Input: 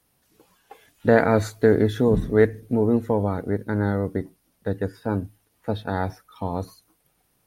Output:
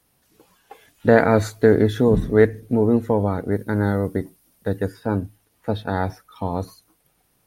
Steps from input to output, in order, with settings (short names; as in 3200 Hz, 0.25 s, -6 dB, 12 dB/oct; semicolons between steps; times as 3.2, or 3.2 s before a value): 3.51–4.94 high shelf 6900 Hz +8.5 dB; gain +2.5 dB